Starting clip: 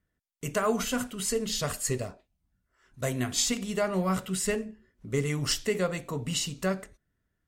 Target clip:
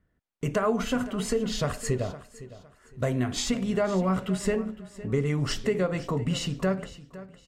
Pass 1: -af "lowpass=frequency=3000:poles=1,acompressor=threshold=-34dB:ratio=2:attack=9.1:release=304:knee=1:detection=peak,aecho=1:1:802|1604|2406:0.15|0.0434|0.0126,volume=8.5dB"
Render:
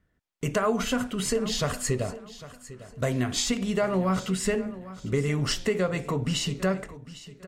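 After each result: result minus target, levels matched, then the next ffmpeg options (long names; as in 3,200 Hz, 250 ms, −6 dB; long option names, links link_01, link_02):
echo 292 ms late; 4,000 Hz band +3.0 dB
-af "lowpass=frequency=3000:poles=1,acompressor=threshold=-34dB:ratio=2:attack=9.1:release=304:knee=1:detection=peak,aecho=1:1:510|1020|1530:0.15|0.0434|0.0126,volume=8.5dB"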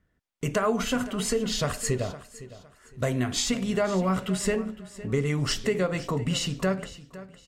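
4,000 Hz band +3.0 dB
-af "lowpass=frequency=1400:poles=1,acompressor=threshold=-34dB:ratio=2:attack=9.1:release=304:knee=1:detection=peak,aecho=1:1:510|1020|1530:0.15|0.0434|0.0126,volume=8.5dB"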